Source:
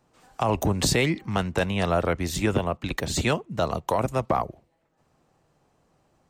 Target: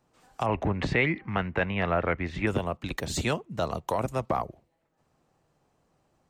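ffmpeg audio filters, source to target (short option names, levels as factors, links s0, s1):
-filter_complex "[0:a]asettb=1/sr,asplit=3[s0][s1][s2];[s0]atrim=end=0.464[s3];[s1]atrim=start=0.46:end=2.47,asetpts=PTS-STARTPTS,afade=t=in:d=0.004:c=qsin,afade=t=out:st=2.006:d=0.004:c=qsin,lowpass=f=2100:t=q:w=2.2[s4];[s2]atrim=start=2.466[s5];[s3][s4]acrossfade=d=0.004:c1=hsin:c2=qsin[s6];[s6][s5]acrossfade=d=0.004:c1=qsin:c2=hsin,volume=0.631"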